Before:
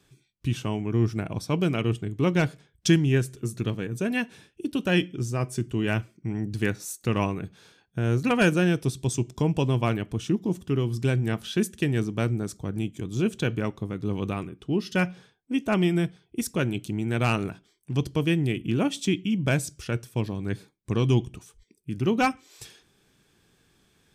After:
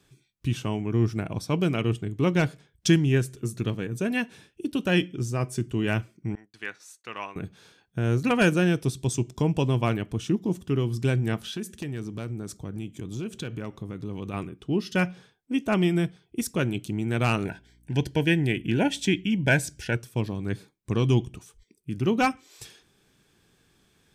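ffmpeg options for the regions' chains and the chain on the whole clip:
-filter_complex "[0:a]asettb=1/sr,asplit=3[s0][s1][s2];[s0]atrim=end=6.354[s3];[s1]atrim=start=6.35:end=7.36,asetpts=PTS-STARTPTS,afade=t=in:d=0.004:c=qsin,afade=t=out:st=1.006:d=0.004:c=qsin,highpass=1200,agate=range=0.0224:threshold=0.00355:ratio=3:release=100:detection=peak,aemphasis=mode=reproduction:type=riaa[s4];[s2]atrim=start=7.356[s5];[s3][s4]acrossfade=d=0.004:c1=hsin:c2=qsin[s6];[s6][s5]acrossfade=d=0.004:c1=qsin:c2=hsin,asettb=1/sr,asplit=3[s7][s8][s9];[s7]atrim=end=11.414[s10];[s8]atrim=start=11.41:end=14.34,asetpts=PTS-STARTPTS,afade=t=in:d=0.004:c=qsin,afade=t=out:st=2.926:d=0.004:c=qsin,acompressor=threshold=0.0282:ratio=3:attack=3.2:release=140:knee=1:detection=peak,aeval=exprs='0.0668*(abs(mod(val(0)/0.0668+3,4)-2)-1)':c=same[s11];[s9]atrim=start=14.336[s12];[s10][s11]acrossfade=d=0.004:c1=hsin:c2=qsin[s13];[s13][s12]acrossfade=d=0.004:c1=qsin:c2=hsin,asettb=1/sr,asplit=3[s14][s15][s16];[s14]atrim=end=17.454[s17];[s15]atrim=start=17.45:end=19.95,asetpts=PTS-STARTPTS,afade=t=in:d=0.004:c=qsin,afade=t=out:st=2.496:d=0.004:c=qsin,equalizer=f=1400:w=1:g=10.5,aeval=exprs='val(0)+0.00126*(sin(2*PI*60*n/s)+sin(2*PI*2*60*n/s)/2+sin(2*PI*3*60*n/s)/3+sin(2*PI*4*60*n/s)/4+sin(2*PI*5*60*n/s)/5)':c=same,asuperstop=centerf=1200:order=8:qfactor=2.5[s18];[s16]atrim=start=19.946[s19];[s17][s18]acrossfade=d=0.004:c1=hsin:c2=qsin[s20];[s20][s19]acrossfade=d=0.004:c1=qsin:c2=hsin"

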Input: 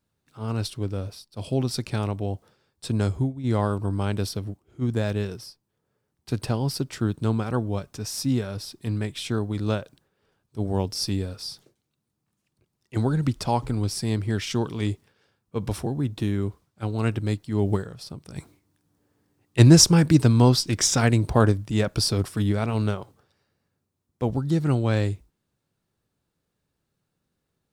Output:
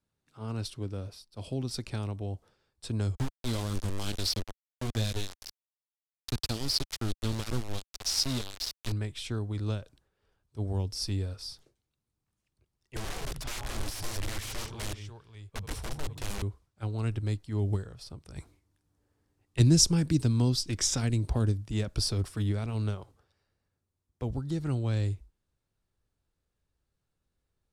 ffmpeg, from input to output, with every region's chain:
-filter_complex "[0:a]asettb=1/sr,asplit=3[s0][s1][s2];[s0]atrim=end=3.154[s3];[s1]atrim=start=3.15:end=8.92,asetpts=PTS-STARTPTS,afade=t=in:d=0.004:c=qsin,afade=t=out:st=5.766:d=0.004:c=qsin,equalizer=f=4300:t=o:w=1.3:g=14,aphaser=in_gain=1:out_gain=1:delay=5:decay=0.34:speed=1.6:type=triangular,aeval=exprs='val(0)*gte(abs(val(0)),0.0631)':c=same[s4];[s2]atrim=start=8.916[s5];[s3][s4]acrossfade=d=0.004:c1=hsin:c2=qsin[s6];[s6][s5]acrossfade=d=0.004:c1=qsin:c2=hsin,asettb=1/sr,asplit=3[s7][s8][s9];[s7]atrim=end=12.964[s10];[s8]atrim=start=12.96:end=16.42,asetpts=PTS-STARTPTS,afade=t=in:d=0.004:c=qsin,afade=t=out:st=3.456:d=0.004:c=qsin,equalizer=f=270:t=o:w=1.1:g=-11,aecho=1:1:79|169|542:0.188|0.282|0.2,atrim=end_sample=152586,aeval=exprs='(mod(20*val(0)+1,2)-1)/20':c=same[s11];[s9]atrim=start=16.416[s12];[s10][s11]acrossfade=d=0.004:c1=hsin:c2=qsin[s13];[s13][s12]acrossfade=d=0.004:c1=qsin:c2=hsin,lowpass=12000,asubboost=boost=6.5:cutoff=62,acrossover=split=340|3000[s14][s15][s16];[s15]acompressor=threshold=0.02:ratio=6[s17];[s14][s17][s16]amix=inputs=3:normalize=0,volume=0.501"

